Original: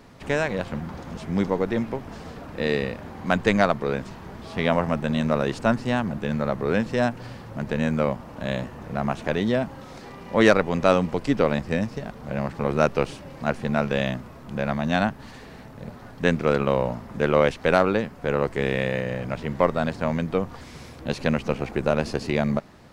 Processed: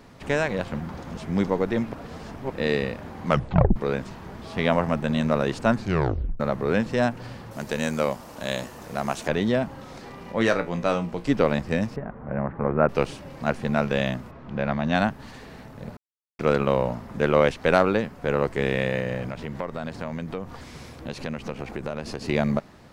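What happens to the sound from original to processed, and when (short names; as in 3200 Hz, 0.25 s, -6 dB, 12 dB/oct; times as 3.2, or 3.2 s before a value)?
1.93–2.5 reverse
3.26 tape stop 0.50 s
5.75 tape stop 0.65 s
7.51–9.28 tone controls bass -7 dB, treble +13 dB
10.32–11.26 resonator 58 Hz, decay 0.22 s, mix 80%
11.96–12.89 LPF 1800 Hz 24 dB/oct
14.3–14.94 LPF 2600 Hz -> 5200 Hz
15.97–16.39 mute
19.28–22.25 compressor 3:1, threshold -29 dBFS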